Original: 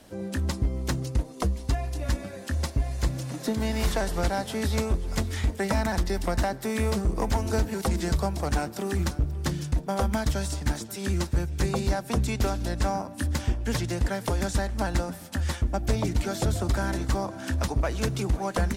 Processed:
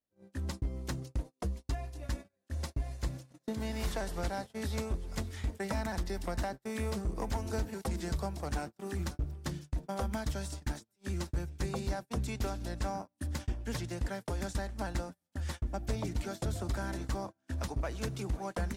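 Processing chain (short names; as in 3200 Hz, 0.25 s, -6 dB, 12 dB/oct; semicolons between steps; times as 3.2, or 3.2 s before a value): gate -30 dBFS, range -34 dB; gain -9 dB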